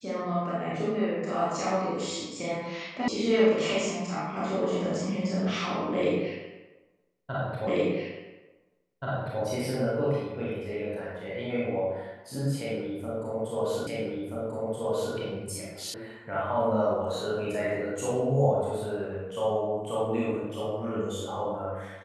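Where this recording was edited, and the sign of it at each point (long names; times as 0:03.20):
0:03.08: cut off before it has died away
0:07.67: the same again, the last 1.73 s
0:13.87: the same again, the last 1.28 s
0:15.94: cut off before it has died away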